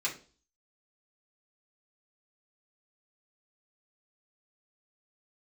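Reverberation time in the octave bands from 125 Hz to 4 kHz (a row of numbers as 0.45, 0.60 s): 0.45, 0.45, 0.45, 0.35, 0.30, 0.40 s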